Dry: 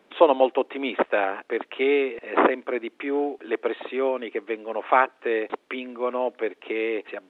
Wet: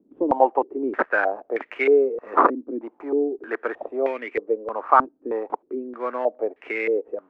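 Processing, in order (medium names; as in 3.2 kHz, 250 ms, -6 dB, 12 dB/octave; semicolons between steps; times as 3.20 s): dead-time distortion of 0.089 ms; step-sequenced low-pass 3.2 Hz 280–2100 Hz; trim -3.5 dB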